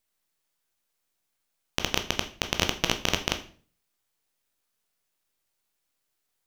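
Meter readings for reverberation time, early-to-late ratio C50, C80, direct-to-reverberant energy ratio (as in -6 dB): 0.45 s, 13.0 dB, 17.0 dB, 6.0 dB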